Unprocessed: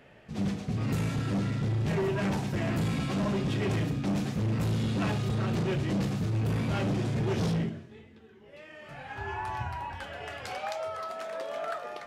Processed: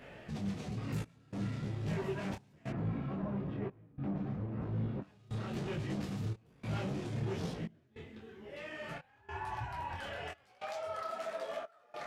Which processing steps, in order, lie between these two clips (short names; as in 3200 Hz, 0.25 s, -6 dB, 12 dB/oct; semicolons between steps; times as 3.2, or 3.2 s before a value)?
2.7–5.02 LPF 1300 Hz 12 dB/oct; limiter -36.5 dBFS, peak gain reduction 13.5 dB; step gate "xxxxxxxxxx..." 147 bpm -24 dB; detuned doubles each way 36 cents; gain +7 dB